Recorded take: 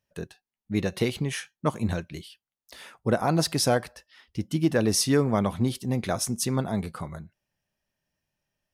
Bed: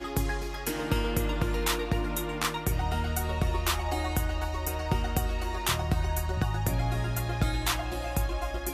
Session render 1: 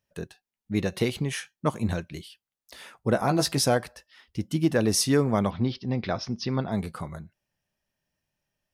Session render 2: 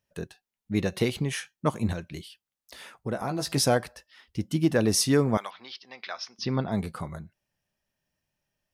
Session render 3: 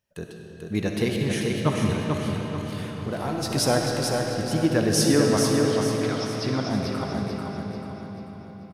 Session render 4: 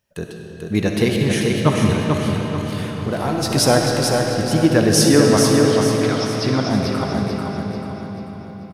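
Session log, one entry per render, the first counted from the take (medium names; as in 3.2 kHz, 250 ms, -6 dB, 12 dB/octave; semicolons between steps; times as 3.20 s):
3.14–3.64 s: doubling 15 ms -7 dB; 5.50–6.72 s: elliptic low-pass 5.2 kHz
1.92–3.51 s: compression 2:1, threshold -31 dBFS; 5.37–6.39 s: high-pass 1.2 kHz
feedback delay 440 ms, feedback 41%, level -4.5 dB; algorithmic reverb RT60 4.9 s, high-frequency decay 0.7×, pre-delay 20 ms, DRR 0.5 dB
trim +7 dB; peak limiter -2 dBFS, peak gain reduction 2 dB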